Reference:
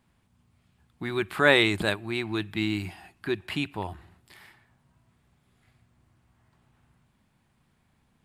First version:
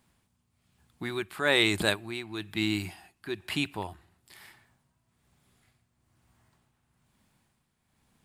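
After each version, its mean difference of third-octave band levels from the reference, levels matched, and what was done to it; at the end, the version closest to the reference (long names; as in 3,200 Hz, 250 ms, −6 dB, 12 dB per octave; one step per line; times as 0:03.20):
3.5 dB: bass and treble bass −2 dB, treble +7 dB
amplitude tremolo 1.1 Hz, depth 63%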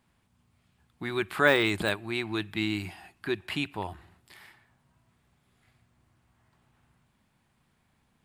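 1.5 dB: de-essing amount 65%
low-shelf EQ 370 Hz −3.5 dB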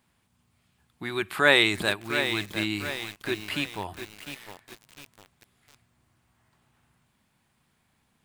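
7.5 dB: spectral tilt +1.5 dB per octave
feedback echo at a low word length 703 ms, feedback 55%, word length 6 bits, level −8.5 dB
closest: second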